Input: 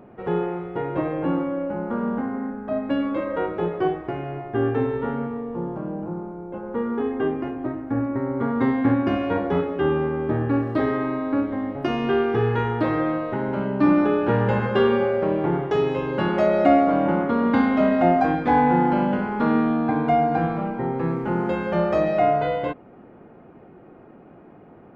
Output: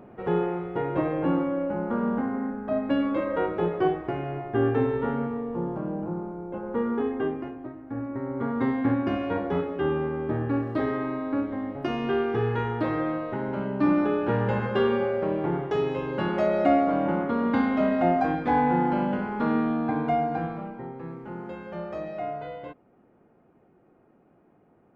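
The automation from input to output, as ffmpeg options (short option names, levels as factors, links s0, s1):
-af "volume=2.11,afade=t=out:st=6.89:d=0.84:silence=0.281838,afade=t=in:st=7.73:d=0.74:silence=0.421697,afade=t=out:st=20:d=0.96:silence=0.354813"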